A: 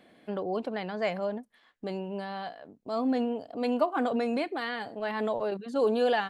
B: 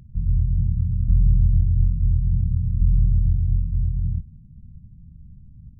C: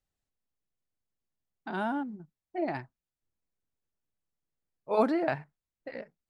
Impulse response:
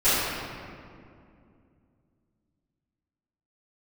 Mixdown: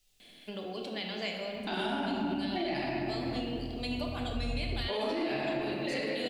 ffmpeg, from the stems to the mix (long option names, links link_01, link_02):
-filter_complex "[0:a]equalizer=frequency=580:width_type=o:width=2.5:gain=-4.5,acompressor=threshold=-38dB:ratio=3,adelay=200,volume=-2.5dB,asplit=2[link_01][link_02];[link_02]volume=-17dB[link_03];[1:a]adelay=1550,volume=-16dB[link_04];[2:a]acompressor=threshold=-33dB:ratio=6,volume=1.5dB,asplit=3[link_05][link_06][link_07];[link_06]volume=-9dB[link_08];[link_07]apad=whole_len=323989[link_09];[link_04][link_09]sidechaincompress=threshold=-55dB:ratio=4:attack=16:release=1100[link_10];[3:a]atrim=start_sample=2205[link_11];[link_03][link_08]amix=inputs=2:normalize=0[link_12];[link_12][link_11]afir=irnorm=-1:irlink=0[link_13];[link_01][link_10][link_05][link_13]amix=inputs=4:normalize=0,highshelf=frequency=2100:width_type=q:width=1.5:gain=11.5,alimiter=limit=-24dB:level=0:latency=1:release=95"